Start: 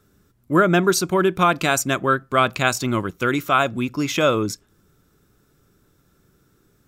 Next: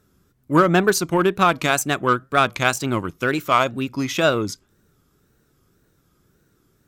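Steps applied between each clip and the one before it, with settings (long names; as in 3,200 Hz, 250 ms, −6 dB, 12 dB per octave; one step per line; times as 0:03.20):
tape wow and flutter 130 cents
harmonic generator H 7 −28 dB, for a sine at −2.5 dBFS
level +1 dB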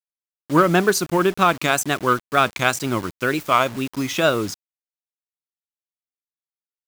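low-shelf EQ 84 Hz −5 dB
bit reduction 6 bits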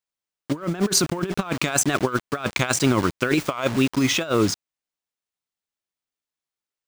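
parametric band 15,000 Hz −13 dB 0.57 octaves
compressor whose output falls as the input rises −23 dBFS, ratio −0.5
level +2 dB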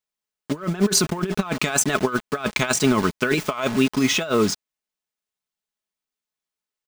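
comb filter 4.7 ms, depth 48%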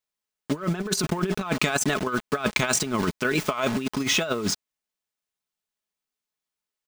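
compressor whose output falls as the input rises −21 dBFS, ratio −0.5
level −2 dB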